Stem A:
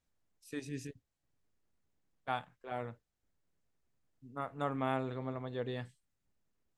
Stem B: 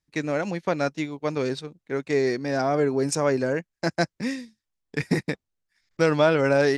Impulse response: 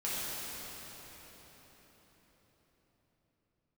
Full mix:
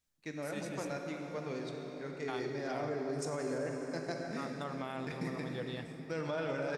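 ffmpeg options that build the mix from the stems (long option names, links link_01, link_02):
-filter_complex "[0:a]highshelf=frequency=2200:gain=9.5,volume=-5.5dB,asplit=2[link_01][link_02];[link_02]volume=-16.5dB[link_03];[1:a]adelay=100,volume=-18dB,asplit=2[link_04][link_05];[link_05]volume=-4.5dB[link_06];[2:a]atrim=start_sample=2205[link_07];[link_03][link_06]amix=inputs=2:normalize=0[link_08];[link_08][link_07]afir=irnorm=-1:irlink=0[link_09];[link_01][link_04][link_09]amix=inputs=3:normalize=0,alimiter=level_in=3.5dB:limit=-24dB:level=0:latency=1:release=32,volume=-3.5dB"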